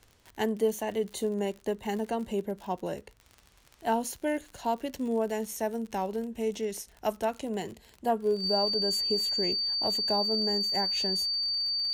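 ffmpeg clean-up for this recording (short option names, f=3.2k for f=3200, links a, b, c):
-af "adeclick=t=4,bandreject=f=4.6k:w=30"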